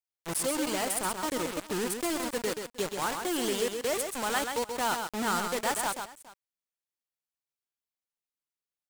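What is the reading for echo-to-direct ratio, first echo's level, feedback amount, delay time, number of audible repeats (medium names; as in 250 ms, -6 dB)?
-6.0 dB, -6.0 dB, no regular repeats, 130 ms, 2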